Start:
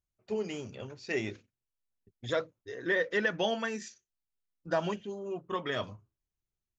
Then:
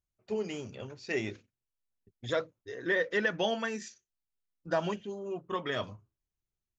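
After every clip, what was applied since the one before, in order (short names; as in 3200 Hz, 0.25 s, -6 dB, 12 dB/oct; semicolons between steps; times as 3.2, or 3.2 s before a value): nothing audible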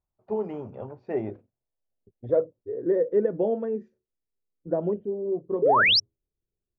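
low-pass sweep 900 Hz -> 450 Hz, 0.64–2.86; painted sound rise, 5.62–6, 380–5800 Hz -22 dBFS; gain +3 dB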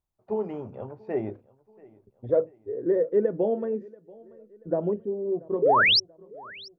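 feedback echo 0.684 s, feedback 47%, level -23.5 dB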